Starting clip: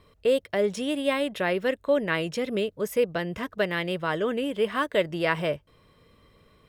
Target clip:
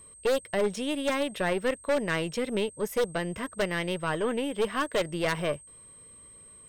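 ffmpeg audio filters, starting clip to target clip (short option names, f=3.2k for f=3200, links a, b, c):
-af "aeval=exprs='0.335*(cos(1*acos(clip(val(0)/0.335,-1,1)))-cos(1*PI/2))+0.0473*(cos(4*acos(clip(val(0)/0.335,-1,1)))-cos(4*PI/2))':c=same,aeval=exprs='0.168*(abs(mod(val(0)/0.168+3,4)-2)-1)':c=same,aeval=exprs='val(0)+0.00447*sin(2*PI*8300*n/s)':c=same,volume=-2dB"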